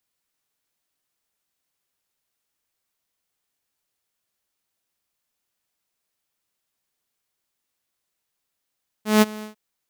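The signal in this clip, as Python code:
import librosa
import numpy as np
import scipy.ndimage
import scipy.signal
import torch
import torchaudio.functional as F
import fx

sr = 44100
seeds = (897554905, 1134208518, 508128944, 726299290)

y = fx.adsr_tone(sr, wave='saw', hz=214.0, attack_ms=167.0, decay_ms=29.0, sustain_db=-21.5, held_s=0.38, release_ms=118.0, level_db=-8.0)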